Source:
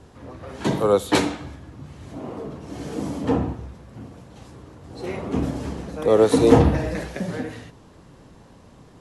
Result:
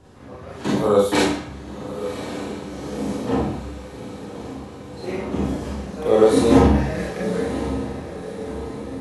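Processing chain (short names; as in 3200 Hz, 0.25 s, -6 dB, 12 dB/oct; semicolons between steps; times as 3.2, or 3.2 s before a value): diffused feedback echo 1.117 s, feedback 59%, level -11.5 dB; Schroeder reverb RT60 0.39 s, combs from 30 ms, DRR -4 dB; gain -4 dB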